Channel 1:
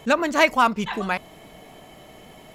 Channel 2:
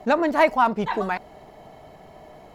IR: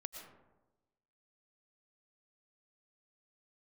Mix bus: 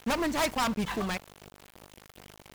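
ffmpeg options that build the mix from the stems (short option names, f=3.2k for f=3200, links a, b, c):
-filter_complex "[0:a]aeval=exprs='0.1*(abs(mod(val(0)/0.1+3,4)-2)-1)':c=same,aeval=exprs='val(0)+0.01*(sin(2*PI*50*n/s)+sin(2*PI*2*50*n/s)/2+sin(2*PI*3*50*n/s)/3+sin(2*PI*4*50*n/s)/4+sin(2*PI*5*50*n/s)/5)':c=same,volume=-5.5dB[a];[1:a]acrusher=bits=4:mix=0:aa=0.5,volume=-13dB[b];[a][b]amix=inputs=2:normalize=0,aeval=exprs='val(0)*gte(abs(val(0)),0.0106)':c=same"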